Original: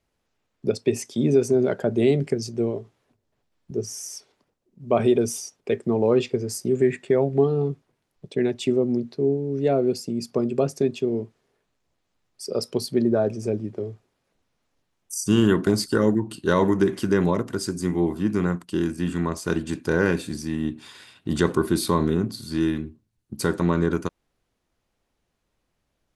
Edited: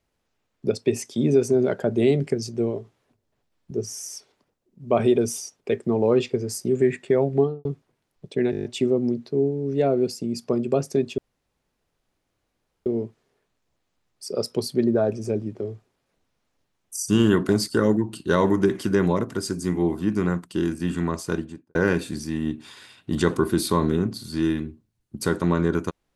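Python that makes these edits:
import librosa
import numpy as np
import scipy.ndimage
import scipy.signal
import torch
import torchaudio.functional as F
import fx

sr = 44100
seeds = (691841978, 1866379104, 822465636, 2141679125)

y = fx.studio_fade_out(x, sr, start_s=7.37, length_s=0.28)
y = fx.studio_fade_out(y, sr, start_s=19.37, length_s=0.56)
y = fx.edit(y, sr, fx.stutter(start_s=8.51, slice_s=0.02, count=8),
    fx.insert_room_tone(at_s=11.04, length_s=1.68), tone=tone)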